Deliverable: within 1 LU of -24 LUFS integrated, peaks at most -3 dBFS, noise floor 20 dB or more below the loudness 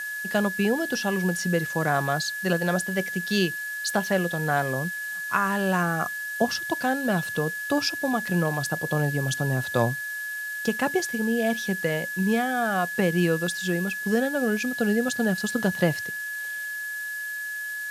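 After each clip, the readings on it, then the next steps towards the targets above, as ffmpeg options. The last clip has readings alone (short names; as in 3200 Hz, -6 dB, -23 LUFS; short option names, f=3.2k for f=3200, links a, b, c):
steady tone 1700 Hz; tone level -30 dBFS; noise floor -33 dBFS; noise floor target -46 dBFS; loudness -25.5 LUFS; peak -8.0 dBFS; loudness target -24.0 LUFS
-> -af "bandreject=f=1.7k:w=30"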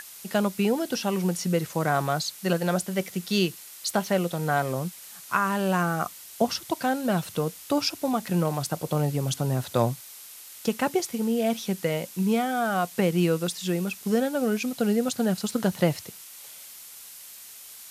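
steady tone none; noise floor -45 dBFS; noise floor target -47 dBFS
-> -af "afftdn=nr=6:nf=-45"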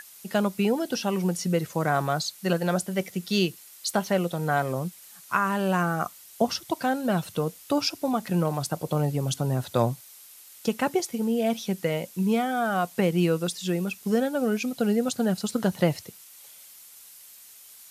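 noise floor -49 dBFS; loudness -27.0 LUFS; peak -8.5 dBFS; loudness target -24.0 LUFS
-> -af "volume=3dB"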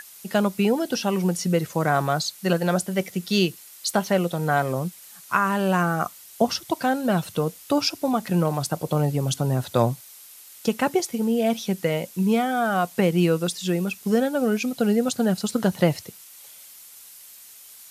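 loudness -24.0 LUFS; peak -5.5 dBFS; noise floor -46 dBFS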